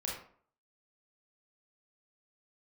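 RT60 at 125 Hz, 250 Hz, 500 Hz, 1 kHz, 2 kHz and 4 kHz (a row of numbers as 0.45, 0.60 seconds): 0.50, 0.55, 0.55, 0.50, 0.40, 0.30 seconds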